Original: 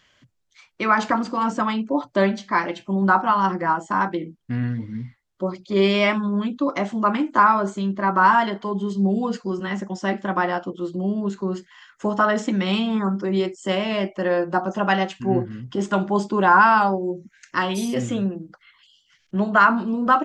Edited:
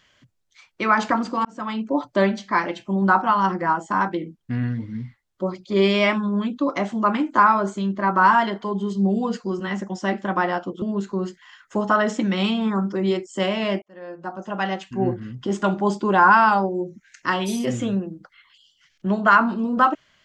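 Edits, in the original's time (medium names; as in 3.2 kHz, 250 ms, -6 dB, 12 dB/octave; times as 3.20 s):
1.45–1.87 s: fade in
10.82–11.11 s: delete
14.11–15.57 s: fade in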